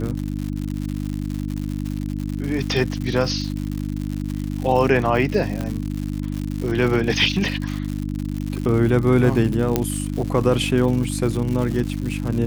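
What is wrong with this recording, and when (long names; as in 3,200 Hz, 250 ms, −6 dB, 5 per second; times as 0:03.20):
surface crackle 160 per second −26 dBFS
mains hum 50 Hz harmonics 6 −26 dBFS
0:05.61: click −14 dBFS
0:09.76: click −4 dBFS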